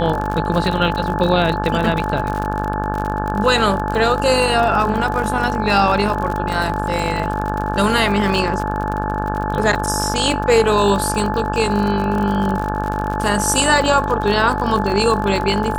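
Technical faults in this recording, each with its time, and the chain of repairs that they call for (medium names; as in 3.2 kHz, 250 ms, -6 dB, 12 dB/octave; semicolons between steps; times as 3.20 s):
buzz 50 Hz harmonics 35 -23 dBFS
crackle 56 per s -22 dBFS
whine 860 Hz -23 dBFS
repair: de-click; band-stop 860 Hz, Q 30; de-hum 50 Hz, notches 35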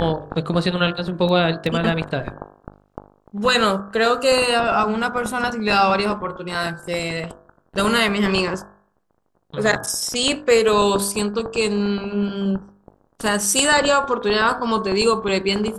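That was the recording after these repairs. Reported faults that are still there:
nothing left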